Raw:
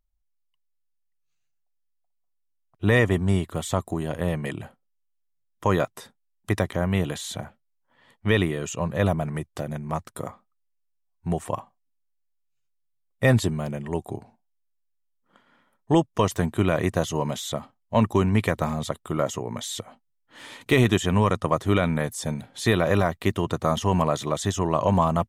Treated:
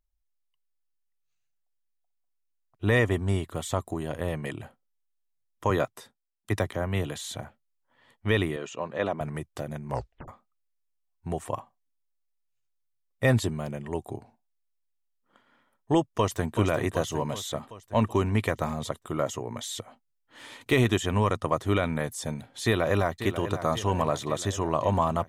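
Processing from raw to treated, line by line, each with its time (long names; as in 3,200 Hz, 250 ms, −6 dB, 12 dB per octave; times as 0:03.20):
0:05.70–0:07.19: multiband upward and downward expander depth 40%
0:08.56–0:09.21: band-pass filter 240–4,500 Hz
0:09.88: tape stop 0.40 s
0:16.16–0:16.56: delay throw 380 ms, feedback 60%, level −7 dB
0:22.64–0:23.22: delay throw 540 ms, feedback 65%, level −11 dB
whole clip: parametric band 180 Hz −8.5 dB 0.26 octaves; level −3 dB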